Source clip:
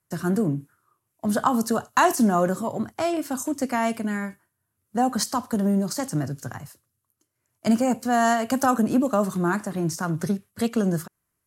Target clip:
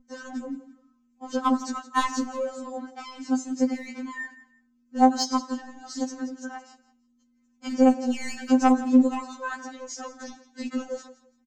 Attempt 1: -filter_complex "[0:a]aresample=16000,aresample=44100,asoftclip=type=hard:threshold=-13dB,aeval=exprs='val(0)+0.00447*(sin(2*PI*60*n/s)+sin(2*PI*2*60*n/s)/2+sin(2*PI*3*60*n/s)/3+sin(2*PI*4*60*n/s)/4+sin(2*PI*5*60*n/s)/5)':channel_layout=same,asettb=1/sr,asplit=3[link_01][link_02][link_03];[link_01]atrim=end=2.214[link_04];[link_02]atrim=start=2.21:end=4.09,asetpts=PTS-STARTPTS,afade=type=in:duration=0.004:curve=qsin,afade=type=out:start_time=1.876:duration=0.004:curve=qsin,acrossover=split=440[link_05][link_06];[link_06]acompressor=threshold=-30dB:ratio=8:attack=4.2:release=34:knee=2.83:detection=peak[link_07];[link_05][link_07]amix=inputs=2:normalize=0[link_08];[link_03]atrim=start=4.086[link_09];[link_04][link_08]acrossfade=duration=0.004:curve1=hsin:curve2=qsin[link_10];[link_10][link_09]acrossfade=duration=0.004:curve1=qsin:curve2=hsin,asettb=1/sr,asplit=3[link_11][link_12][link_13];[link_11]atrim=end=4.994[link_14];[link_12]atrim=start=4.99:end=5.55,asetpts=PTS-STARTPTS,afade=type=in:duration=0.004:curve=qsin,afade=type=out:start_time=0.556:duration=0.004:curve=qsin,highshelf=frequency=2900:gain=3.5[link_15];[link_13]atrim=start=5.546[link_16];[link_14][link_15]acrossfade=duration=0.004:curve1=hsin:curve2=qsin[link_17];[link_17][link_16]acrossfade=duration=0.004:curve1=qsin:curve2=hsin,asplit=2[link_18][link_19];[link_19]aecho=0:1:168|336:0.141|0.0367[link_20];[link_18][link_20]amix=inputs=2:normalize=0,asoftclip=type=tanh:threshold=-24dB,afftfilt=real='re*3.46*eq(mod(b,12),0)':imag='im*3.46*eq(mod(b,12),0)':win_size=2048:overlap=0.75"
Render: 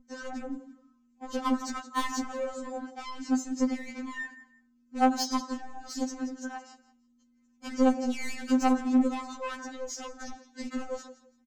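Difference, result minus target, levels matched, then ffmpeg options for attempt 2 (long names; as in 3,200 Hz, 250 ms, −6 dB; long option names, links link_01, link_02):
soft clipping: distortion +13 dB
-filter_complex "[0:a]aresample=16000,aresample=44100,asoftclip=type=hard:threshold=-13dB,aeval=exprs='val(0)+0.00447*(sin(2*PI*60*n/s)+sin(2*PI*2*60*n/s)/2+sin(2*PI*3*60*n/s)/3+sin(2*PI*4*60*n/s)/4+sin(2*PI*5*60*n/s)/5)':channel_layout=same,asettb=1/sr,asplit=3[link_01][link_02][link_03];[link_01]atrim=end=2.214[link_04];[link_02]atrim=start=2.21:end=4.09,asetpts=PTS-STARTPTS,afade=type=in:duration=0.004:curve=qsin,afade=type=out:start_time=1.876:duration=0.004:curve=qsin,acrossover=split=440[link_05][link_06];[link_06]acompressor=threshold=-30dB:ratio=8:attack=4.2:release=34:knee=2.83:detection=peak[link_07];[link_05][link_07]amix=inputs=2:normalize=0[link_08];[link_03]atrim=start=4.086[link_09];[link_04][link_08]acrossfade=duration=0.004:curve1=hsin:curve2=qsin[link_10];[link_10][link_09]acrossfade=duration=0.004:curve1=qsin:curve2=hsin,asettb=1/sr,asplit=3[link_11][link_12][link_13];[link_11]atrim=end=4.994[link_14];[link_12]atrim=start=4.99:end=5.55,asetpts=PTS-STARTPTS,afade=type=in:duration=0.004:curve=qsin,afade=type=out:start_time=0.556:duration=0.004:curve=qsin,highshelf=frequency=2900:gain=3.5[link_15];[link_13]atrim=start=5.546[link_16];[link_14][link_15]acrossfade=duration=0.004:curve1=hsin:curve2=qsin[link_17];[link_17][link_16]acrossfade=duration=0.004:curve1=qsin:curve2=hsin,asplit=2[link_18][link_19];[link_19]aecho=0:1:168|336:0.141|0.0367[link_20];[link_18][link_20]amix=inputs=2:normalize=0,asoftclip=type=tanh:threshold=-13dB,afftfilt=real='re*3.46*eq(mod(b,12),0)':imag='im*3.46*eq(mod(b,12),0)':win_size=2048:overlap=0.75"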